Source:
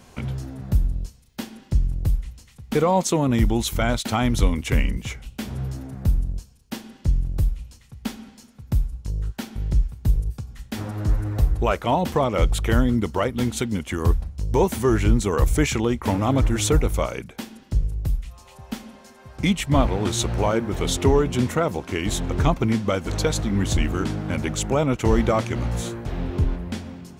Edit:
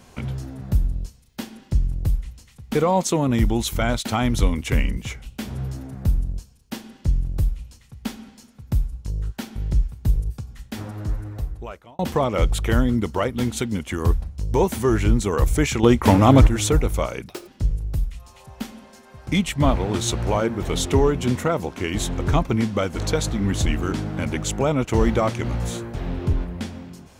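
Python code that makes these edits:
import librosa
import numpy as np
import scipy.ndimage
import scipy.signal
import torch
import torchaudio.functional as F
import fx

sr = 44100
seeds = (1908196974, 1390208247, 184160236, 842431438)

y = fx.edit(x, sr, fx.fade_out_span(start_s=10.46, length_s=1.53),
    fx.clip_gain(start_s=15.83, length_s=0.64, db=7.5),
    fx.speed_span(start_s=17.28, length_s=0.31, speed=1.58), tone=tone)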